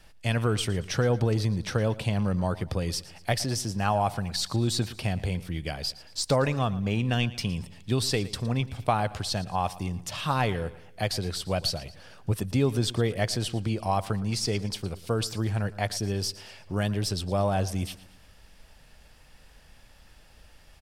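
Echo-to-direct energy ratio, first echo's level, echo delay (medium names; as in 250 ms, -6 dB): -17.0 dB, -18.0 dB, 114 ms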